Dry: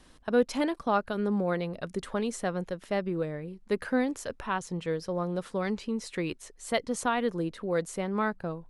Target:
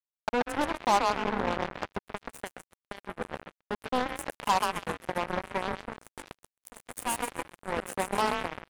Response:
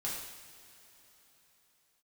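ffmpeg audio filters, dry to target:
-filter_complex "[0:a]equalizer=frequency=740:width=0.55:gain=4,asplit=3[link_01][link_02][link_03];[link_01]afade=type=out:start_time=5.95:duration=0.02[link_04];[link_02]aeval=exprs='(tanh(25.1*val(0)+0.4)-tanh(0.4))/25.1':channel_layout=same,afade=type=in:start_time=5.95:duration=0.02,afade=type=out:start_time=7.58:duration=0.02[link_05];[link_03]afade=type=in:start_time=7.58:duration=0.02[link_06];[link_04][link_05][link_06]amix=inputs=3:normalize=0,acompressor=threshold=-32dB:ratio=2,asplit=2[link_07][link_08];[link_08]aecho=0:1:888|1776|2664:0.178|0.0498|0.0139[link_09];[link_07][link_09]amix=inputs=2:normalize=0,asettb=1/sr,asplit=3[link_10][link_11][link_12];[link_10]atrim=end=2.004[link_13];[link_11]atrim=start=2:end=3.04,asetpts=PTS-STARTPTS,afade=type=in:duration=0.004:curve=qsin,afade=type=out:start_time=1.036:duration=0.004:curve=qsin,acrossover=split=190|3000[link_14][link_15][link_16];[link_15]acompressor=threshold=-34dB:ratio=10[link_17];[link_14][link_17][link_16]amix=inputs=3:normalize=0[link_18];[link_12]atrim=start=3.036[link_19];[link_13][link_18]acrossfade=duration=0.004:curve1=hsin:curve2=qsin[link_20];[link_20][link_19]acrossfade=duration=0.004:curve1=qsin:curve2=hsin,highpass=frequency=44:poles=1,afftdn=noise_reduction=14:noise_floor=-54,superequalizer=9b=3.16:13b=0.355:14b=0.282:16b=3.16,asplit=2[link_21][link_22];[link_22]asplit=7[link_23][link_24][link_25][link_26][link_27][link_28][link_29];[link_23]adelay=131,afreqshift=30,volume=-4dB[link_30];[link_24]adelay=262,afreqshift=60,volume=-9.5dB[link_31];[link_25]adelay=393,afreqshift=90,volume=-15dB[link_32];[link_26]adelay=524,afreqshift=120,volume=-20.5dB[link_33];[link_27]adelay=655,afreqshift=150,volume=-26.1dB[link_34];[link_28]adelay=786,afreqshift=180,volume=-31.6dB[link_35];[link_29]adelay=917,afreqshift=210,volume=-37.1dB[link_36];[link_30][link_31][link_32][link_33][link_34][link_35][link_36]amix=inputs=7:normalize=0[link_37];[link_21][link_37]amix=inputs=2:normalize=0,acrusher=bits=3:mix=0:aa=0.5"

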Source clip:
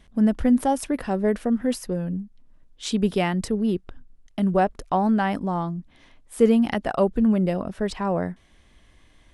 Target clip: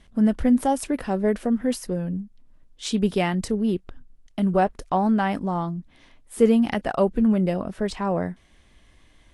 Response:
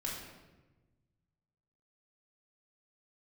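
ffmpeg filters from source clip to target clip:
-ar 32000 -c:a libvorbis -b:a 48k

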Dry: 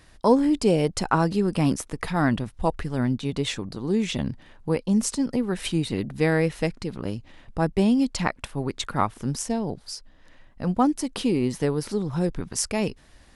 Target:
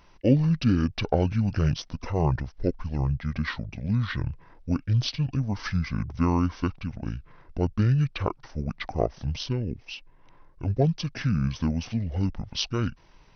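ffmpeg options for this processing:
ffmpeg -i in.wav -af "asetrate=24046,aresample=44100,atempo=1.83401,volume=-1.5dB" out.wav

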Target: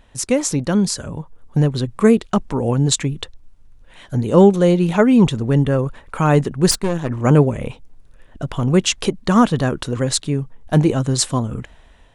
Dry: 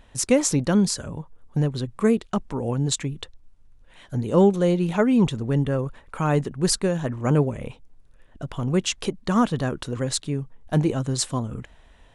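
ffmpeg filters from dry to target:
ffmpeg -i in.wav -filter_complex "[0:a]dynaudnorm=framelen=400:gausssize=5:maxgain=8dB,asettb=1/sr,asplit=3[link_01][link_02][link_03];[link_01]atrim=end=6.714[link_04];[link_02]atrim=start=6.71:end=7.11,asetpts=PTS-STARTPTS,afade=type=in:duration=0.004:curve=qsin,afade=type=out:start_time=0.396:duration=0.004:curve=qsin,aeval=exprs='(tanh(5.62*val(0)+0.8)-tanh(0.8))/5.62':channel_layout=same[link_05];[link_03]atrim=start=7.106[link_06];[link_04][link_05]acrossfade=duration=0.004:curve1=hsin:curve2=qsin[link_07];[link_07][link_06]acrossfade=duration=0.004:curve1=qsin:curve2=hsin,volume=1dB" out.wav

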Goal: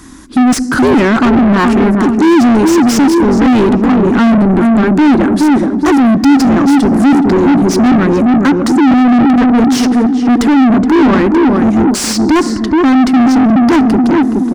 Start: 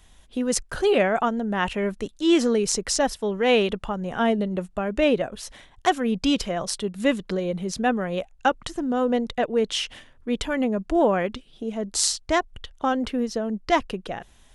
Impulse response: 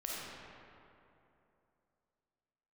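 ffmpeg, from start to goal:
-filter_complex "[0:a]firequalizer=gain_entry='entry(190,0);entry(280,14);entry(430,-12);entry(670,-22);entry(1100,-7);entry(3100,-23);entry(4700,-6);entry(11000,-3)':delay=0.05:min_phase=1,asplit=2[link_01][link_02];[link_02]adelay=422,lowpass=frequency=860:poles=1,volume=-6dB,asplit=2[link_03][link_04];[link_04]adelay=422,lowpass=frequency=860:poles=1,volume=0.42,asplit=2[link_05][link_06];[link_06]adelay=422,lowpass=frequency=860:poles=1,volume=0.42,asplit=2[link_07][link_08];[link_08]adelay=422,lowpass=frequency=860:poles=1,volume=0.42,asplit=2[link_09][link_10];[link_10]adelay=422,lowpass=frequency=860:poles=1,volume=0.42[link_11];[link_01][link_03][link_05][link_07][link_09][link_11]amix=inputs=6:normalize=0,acontrast=27,asplit=2[link_12][link_13];[1:a]atrim=start_sample=2205,asetrate=48510,aresample=44100[link_14];[link_13][link_14]afir=irnorm=-1:irlink=0,volume=-23dB[link_15];[link_12][link_15]amix=inputs=2:normalize=0,asplit=2[link_16][link_17];[link_17]highpass=frequency=720:poles=1,volume=37dB,asoftclip=type=tanh:threshold=0dB[link_18];[link_16][link_18]amix=inputs=2:normalize=0,lowpass=frequency=2200:poles=1,volume=-6dB,volume=-1dB"

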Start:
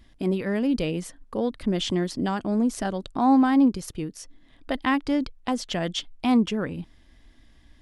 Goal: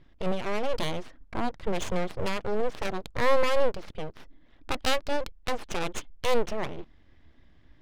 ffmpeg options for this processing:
ffmpeg -i in.wav -af "aeval=exprs='abs(val(0))':channel_layout=same,adynamicsmooth=sensitivity=6:basefreq=2200,highshelf=frequency=2900:gain=8,volume=-1dB" out.wav

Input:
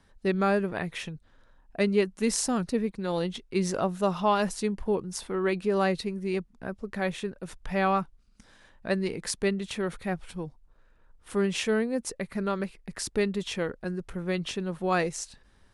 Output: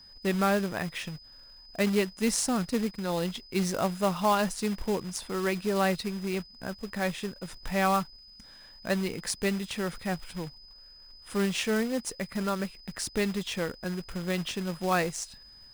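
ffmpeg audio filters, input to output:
ffmpeg -i in.wav -af "equalizer=frequency=400:width_type=o:width=0.6:gain=-4,acrusher=bits=3:mode=log:mix=0:aa=0.000001,aeval=exprs='val(0)+0.00316*sin(2*PI*5000*n/s)':channel_layout=same" out.wav

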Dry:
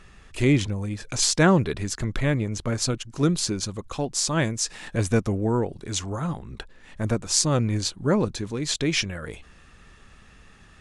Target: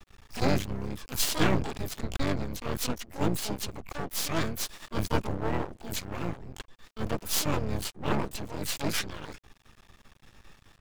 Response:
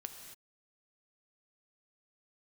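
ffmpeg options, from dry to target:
-filter_complex "[0:a]asplit=4[link_01][link_02][link_03][link_04];[link_02]asetrate=22050,aresample=44100,atempo=2,volume=-12dB[link_05];[link_03]asetrate=29433,aresample=44100,atempo=1.49831,volume=-2dB[link_06];[link_04]asetrate=88200,aresample=44100,atempo=0.5,volume=-2dB[link_07];[link_01][link_05][link_06][link_07]amix=inputs=4:normalize=0,aeval=exprs='max(val(0),0)':channel_layout=same,volume=-5.5dB"

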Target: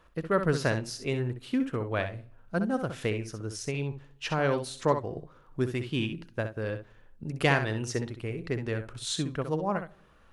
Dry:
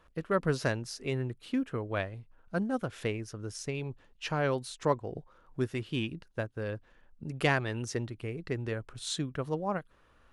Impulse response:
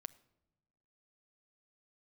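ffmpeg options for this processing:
-filter_complex "[0:a]asplit=2[link_01][link_02];[1:a]atrim=start_sample=2205,asetrate=48510,aresample=44100,adelay=64[link_03];[link_02][link_03]afir=irnorm=-1:irlink=0,volume=-3dB[link_04];[link_01][link_04]amix=inputs=2:normalize=0,volume=2.5dB"

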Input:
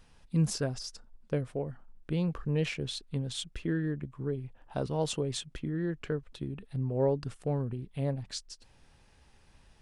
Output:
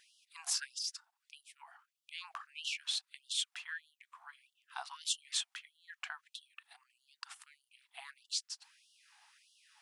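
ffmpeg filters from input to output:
ffmpeg -i in.wav -af "afftfilt=real='re*gte(b*sr/1024,660*pow(2800/660,0.5+0.5*sin(2*PI*1.6*pts/sr)))':imag='im*gte(b*sr/1024,660*pow(2800/660,0.5+0.5*sin(2*PI*1.6*pts/sr)))':win_size=1024:overlap=0.75,volume=3dB" out.wav

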